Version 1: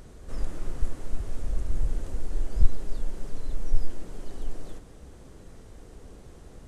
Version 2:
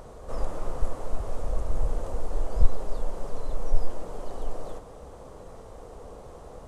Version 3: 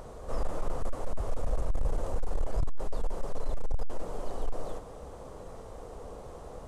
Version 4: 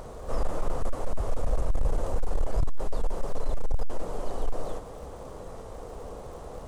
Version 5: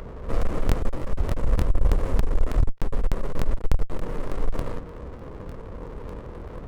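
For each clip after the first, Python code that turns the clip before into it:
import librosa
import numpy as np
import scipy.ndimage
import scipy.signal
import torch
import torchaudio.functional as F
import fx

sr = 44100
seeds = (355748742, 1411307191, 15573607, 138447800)

y1 = fx.band_shelf(x, sr, hz=750.0, db=11.5, octaves=1.7)
y2 = np.clip(y1, -10.0 ** (-21.0 / 20.0), 10.0 ** (-21.0 / 20.0))
y3 = fx.dmg_crackle(y2, sr, seeds[0], per_s=140.0, level_db=-50.0)
y3 = F.gain(torch.from_numpy(y3), 3.5).numpy()
y4 = fx.wiener(y3, sr, points=25)
y4 = fx.buffer_crackle(y4, sr, first_s=0.37, period_s=0.3, block=1024, kind='repeat')
y4 = fx.running_max(y4, sr, window=33)
y4 = F.gain(torch.from_numpy(y4), 6.0).numpy()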